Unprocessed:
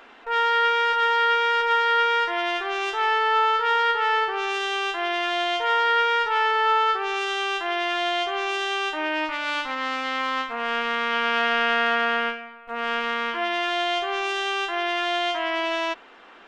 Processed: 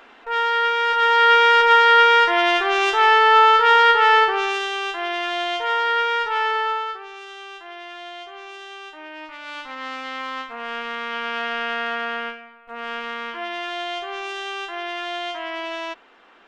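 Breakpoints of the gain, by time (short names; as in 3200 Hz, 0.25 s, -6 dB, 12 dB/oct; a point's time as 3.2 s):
0.77 s +0.5 dB
1.36 s +7.5 dB
4.22 s +7.5 dB
4.72 s 0 dB
6.56 s 0 dB
7.1 s -12 dB
9.13 s -12 dB
9.86 s -4 dB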